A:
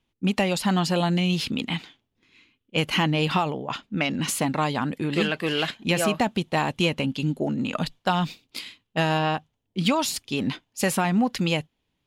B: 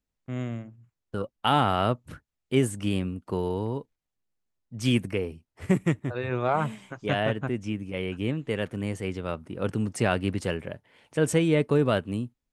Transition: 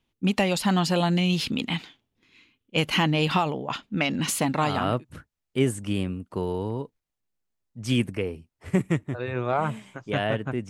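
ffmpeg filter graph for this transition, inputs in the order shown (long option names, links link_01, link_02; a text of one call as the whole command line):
ffmpeg -i cue0.wav -i cue1.wav -filter_complex "[0:a]apad=whole_dur=10.69,atrim=end=10.69,atrim=end=5.05,asetpts=PTS-STARTPTS[link_01];[1:a]atrim=start=1.53:end=7.65,asetpts=PTS-STARTPTS[link_02];[link_01][link_02]acrossfade=duration=0.48:curve1=qsin:curve2=qsin" out.wav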